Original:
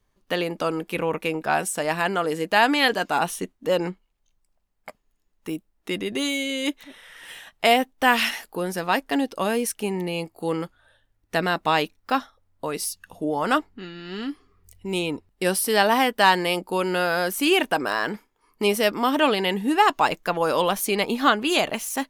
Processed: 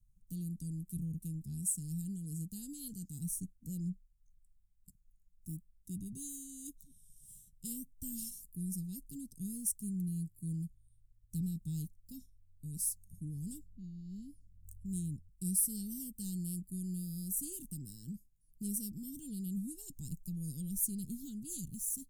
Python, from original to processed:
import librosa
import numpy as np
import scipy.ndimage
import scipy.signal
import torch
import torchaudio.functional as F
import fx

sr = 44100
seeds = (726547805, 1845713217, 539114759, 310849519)

y = scipy.signal.sosfilt(scipy.signal.ellip(3, 1.0, 60, [160.0, 7800.0], 'bandstop', fs=sr, output='sos'), x)
y = fx.low_shelf(y, sr, hz=140.0, db=8.5)
y = y * 10.0 ** (-4.0 / 20.0)